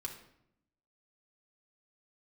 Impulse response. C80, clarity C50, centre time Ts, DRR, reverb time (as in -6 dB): 11.5 dB, 7.5 dB, 18 ms, -1.0 dB, 0.75 s